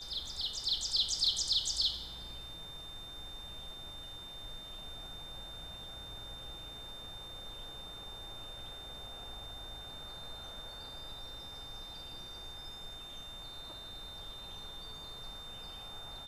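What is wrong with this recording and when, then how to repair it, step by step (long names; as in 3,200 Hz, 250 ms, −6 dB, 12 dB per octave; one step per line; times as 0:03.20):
whistle 3,600 Hz −46 dBFS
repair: notch filter 3,600 Hz, Q 30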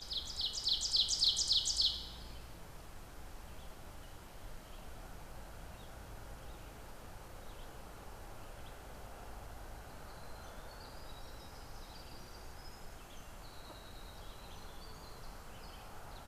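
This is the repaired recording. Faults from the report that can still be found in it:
none of them is left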